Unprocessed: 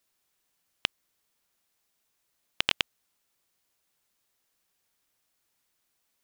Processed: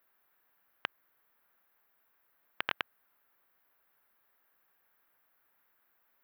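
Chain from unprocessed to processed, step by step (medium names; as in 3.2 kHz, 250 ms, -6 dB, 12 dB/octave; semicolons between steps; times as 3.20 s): FFT filter 110 Hz 0 dB, 1.6 kHz +13 dB, 2.6 kHz +2 dB, 5.1 kHz -9 dB, 8.2 kHz -20 dB, 13 kHz +9 dB; peak limiter -8.5 dBFS, peak gain reduction 9 dB; trim -3 dB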